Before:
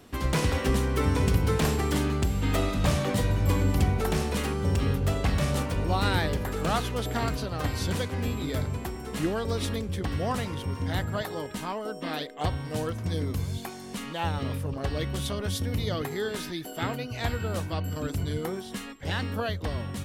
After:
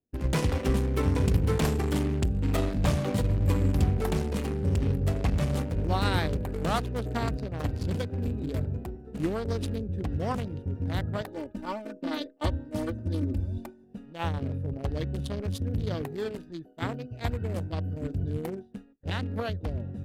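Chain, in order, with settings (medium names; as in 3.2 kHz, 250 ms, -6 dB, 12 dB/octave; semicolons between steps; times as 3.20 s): local Wiener filter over 41 samples; 11.27–13.84 s: comb 3.4 ms, depth 88%; expander -32 dBFS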